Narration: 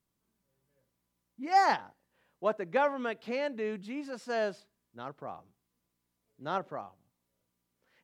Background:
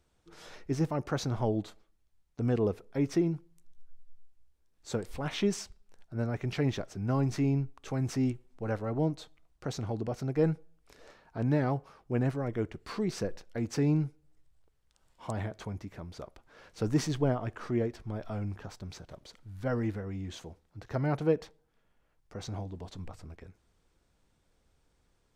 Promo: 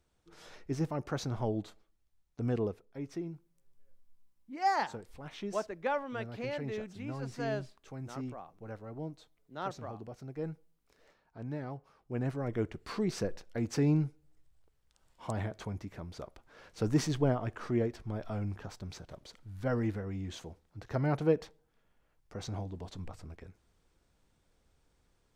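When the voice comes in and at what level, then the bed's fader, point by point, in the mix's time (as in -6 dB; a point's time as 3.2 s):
3.10 s, -5.0 dB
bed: 2.61 s -3.5 dB
2.83 s -11.5 dB
11.76 s -11.5 dB
12.55 s -0.5 dB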